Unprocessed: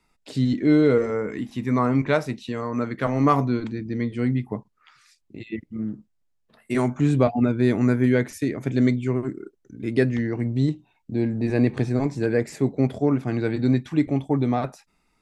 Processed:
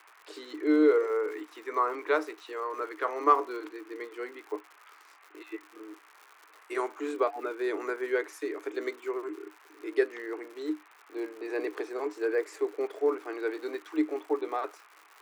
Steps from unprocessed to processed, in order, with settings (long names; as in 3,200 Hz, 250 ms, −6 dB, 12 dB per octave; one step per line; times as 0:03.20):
noise in a band 650–2,500 Hz −55 dBFS
surface crackle 140 per second −34 dBFS
Chebyshev high-pass with heavy ripple 300 Hz, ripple 9 dB